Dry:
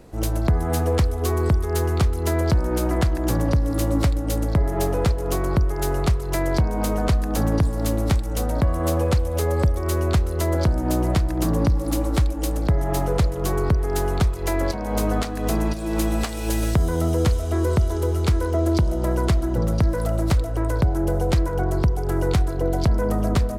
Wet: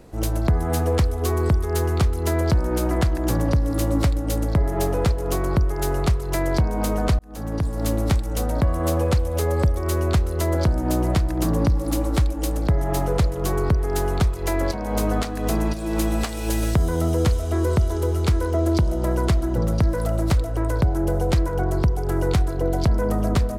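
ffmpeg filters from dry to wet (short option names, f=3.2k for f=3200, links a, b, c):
-filter_complex "[0:a]asplit=2[a][b];[a]atrim=end=7.19,asetpts=PTS-STARTPTS,afade=t=out:st=7.186:d=0.004:c=hsin[c];[b]atrim=start=7.19,asetpts=PTS-STARTPTS,afade=t=in:d=0.69[d];[c][d]concat=n=2:v=0:a=1"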